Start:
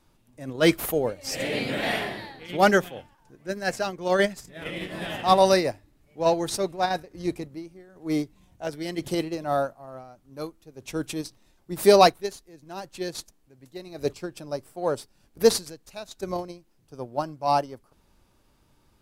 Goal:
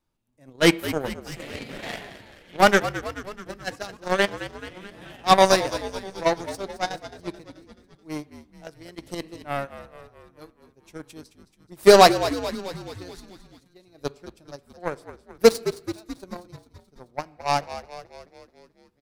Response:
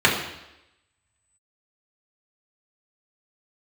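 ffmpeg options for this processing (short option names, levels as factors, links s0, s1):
-filter_complex "[0:a]aeval=exprs='0.596*(cos(1*acos(clip(val(0)/0.596,-1,1)))-cos(1*PI/2))+0.0133*(cos(5*acos(clip(val(0)/0.596,-1,1)))-cos(5*PI/2))+0.0841*(cos(7*acos(clip(val(0)/0.596,-1,1)))-cos(7*PI/2))':c=same,asplit=8[s0][s1][s2][s3][s4][s5][s6][s7];[s1]adelay=216,afreqshift=-62,volume=0.224[s8];[s2]adelay=432,afreqshift=-124,volume=0.135[s9];[s3]adelay=648,afreqshift=-186,volume=0.0804[s10];[s4]adelay=864,afreqshift=-248,volume=0.0484[s11];[s5]adelay=1080,afreqshift=-310,volume=0.0292[s12];[s6]adelay=1296,afreqshift=-372,volume=0.0174[s13];[s7]adelay=1512,afreqshift=-434,volume=0.0105[s14];[s0][s8][s9][s10][s11][s12][s13][s14]amix=inputs=8:normalize=0,asplit=2[s15][s16];[1:a]atrim=start_sample=2205,adelay=15[s17];[s16][s17]afir=irnorm=-1:irlink=0,volume=0.0112[s18];[s15][s18]amix=inputs=2:normalize=0,volume=1.41"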